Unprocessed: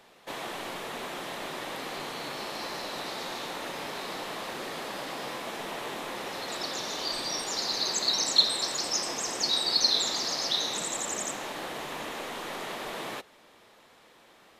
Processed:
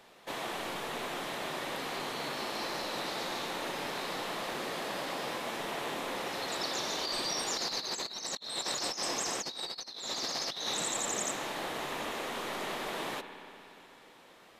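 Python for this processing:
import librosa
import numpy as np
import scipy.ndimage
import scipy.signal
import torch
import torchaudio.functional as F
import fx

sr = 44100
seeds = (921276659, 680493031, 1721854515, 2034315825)

y = fx.rev_spring(x, sr, rt60_s=3.3, pass_ms=(59,), chirp_ms=20, drr_db=8.5)
y = fx.over_compress(y, sr, threshold_db=-32.0, ratio=-0.5)
y = y * librosa.db_to_amplitude(-2.5)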